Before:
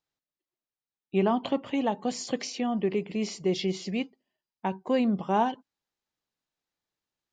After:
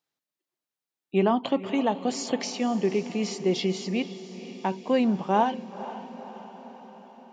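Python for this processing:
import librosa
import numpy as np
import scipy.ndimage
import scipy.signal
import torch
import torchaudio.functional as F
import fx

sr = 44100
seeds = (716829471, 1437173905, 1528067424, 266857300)

p1 = scipy.signal.sosfilt(scipy.signal.butter(2, 140.0, 'highpass', fs=sr, output='sos'), x)
p2 = p1 + fx.echo_diffused(p1, sr, ms=495, feedback_pct=59, wet_db=-14.0, dry=0)
y = F.gain(torch.from_numpy(p2), 2.5).numpy()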